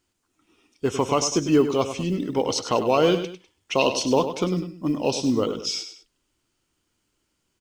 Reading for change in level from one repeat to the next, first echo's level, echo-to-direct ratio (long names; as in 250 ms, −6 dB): −8.5 dB, −10.0 dB, −9.5 dB